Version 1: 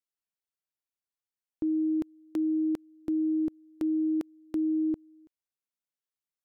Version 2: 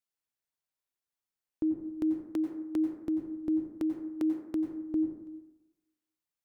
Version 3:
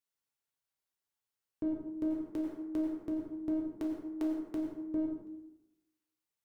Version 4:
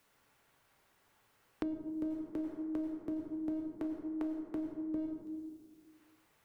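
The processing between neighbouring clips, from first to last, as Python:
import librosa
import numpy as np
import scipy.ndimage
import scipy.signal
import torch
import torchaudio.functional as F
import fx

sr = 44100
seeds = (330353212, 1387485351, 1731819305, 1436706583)

y1 = fx.rev_plate(x, sr, seeds[0], rt60_s=1.0, hf_ratio=0.35, predelay_ms=80, drr_db=4.0)
y2 = fx.diode_clip(y1, sr, knee_db=-28.0)
y2 = fx.rev_gated(y2, sr, seeds[1], gate_ms=200, shape='falling', drr_db=-0.5)
y2 = F.gain(torch.from_numpy(y2), -3.0).numpy()
y3 = fx.band_squash(y2, sr, depth_pct=100)
y3 = F.gain(torch.from_numpy(y3), -3.5).numpy()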